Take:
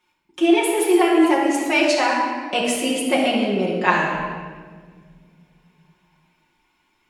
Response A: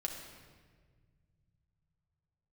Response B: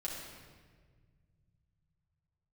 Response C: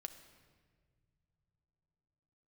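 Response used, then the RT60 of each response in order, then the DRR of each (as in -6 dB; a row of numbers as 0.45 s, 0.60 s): B; 1.6 s, 1.6 s, no single decay rate; 0.5 dB, -5.0 dB, 8.0 dB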